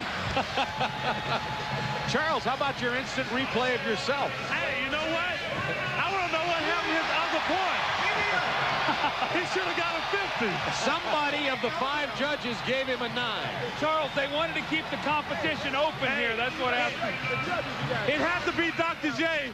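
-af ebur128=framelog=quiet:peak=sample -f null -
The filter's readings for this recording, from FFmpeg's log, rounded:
Integrated loudness:
  I:         -27.6 LUFS
  Threshold: -37.6 LUFS
Loudness range:
  LRA:         2.1 LU
  Threshold: -47.5 LUFS
  LRA low:   -28.4 LUFS
  LRA high:  -26.3 LUFS
Sample peak:
  Peak:      -13.3 dBFS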